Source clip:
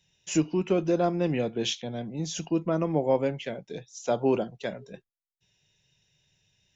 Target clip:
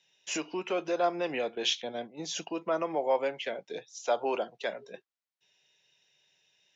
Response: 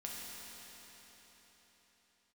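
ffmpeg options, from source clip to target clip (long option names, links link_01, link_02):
-filter_complex "[0:a]highpass=420,lowpass=5500,asettb=1/sr,asplit=3[link_01][link_02][link_03];[link_01]atrim=end=1.554[link_04];[link_02]atrim=start=1.55:end=2.47,asetpts=PTS-STARTPTS,afade=type=in:duration=0.004:curve=qsin,afade=type=out:start_time=0.916:duration=0.004:curve=qsin,agate=range=-9dB:threshold=-41dB:ratio=16:detection=peak[link_05];[link_03]atrim=start=2.466[link_06];[link_04][link_05]acrossfade=duration=0.004:curve1=hsin:curve2=qsin[link_07];[link_07][link_06]acrossfade=duration=0.004:curve1=qsin:curve2=hsin,acrossover=split=550|1600[link_08][link_09][link_10];[link_08]alimiter=level_in=9dB:limit=-24dB:level=0:latency=1:release=188,volume=-9dB[link_11];[link_11][link_09][link_10]amix=inputs=3:normalize=0,volume=2.5dB"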